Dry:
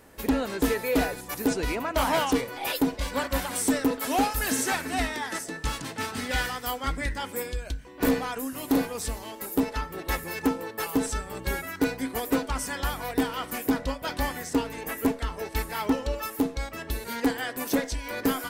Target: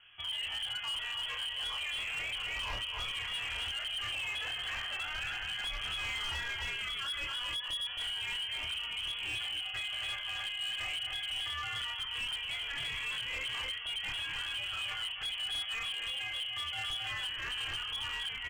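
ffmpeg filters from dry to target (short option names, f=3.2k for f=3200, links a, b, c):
-filter_complex "[0:a]lowpass=f=2.9k:t=q:w=0.5098,lowpass=f=2.9k:t=q:w=0.6013,lowpass=f=2.9k:t=q:w=0.9,lowpass=f=2.9k:t=q:w=2.563,afreqshift=-3400,dynaudnorm=f=360:g=7:m=12dB,flanger=delay=0.7:depth=1.3:regen=60:speed=0.34:shape=triangular,asplit=2[a][b];[b]aecho=0:1:269:0.335[c];[a][c]amix=inputs=2:normalize=0,acompressor=threshold=-27dB:ratio=16,alimiter=level_in=3.5dB:limit=-24dB:level=0:latency=1:release=38,volume=-3.5dB,lowshelf=f=140:t=q:w=1.5:g=13.5,asplit=2[d][e];[e]adelay=27,volume=-3dB[f];[d][f]amix=inputs=2:normalize=0,bandreject=f=139.1:t=h:w=4,bandreject=f=278.2:t=h:w=4,bandreject=f=417.3:t=h:w=4,bandreject=f=556.4:t=h:w=4,bandreject=f=695.5:t=h:w=4,bandreject=f=834.6:t=h:w=4,bandreject=f=973.7:t=h:w=4,bandreject=f=1.1128k:t=h:w=4,bandreject=f=1.2519k:t=h:w=4,bandreject=f=1.391k:t=h:w=4,bandreject=f=1.5301k:t=h:w=4,bandreject=f=1.6692k:t=h:w=4,bandreject=f=1.8083k:t=h:w=4,bandreject=f=1.9474k:t=h:w=4,bandreject=f=2.0865k:t=h:w=4,bandreject=f=2.2256k:t=h:w=4,bandreject=f=2.3647k:t=h:w=4,bandreject=f=2.5038k:t=h:w=4,bandreject=f=2.6429k:t=h:w=4,bandreject=f=2.782k:t=h:w=4,volume=31dB,asoftclip=hard,volume=-31dB,volume=-2dB"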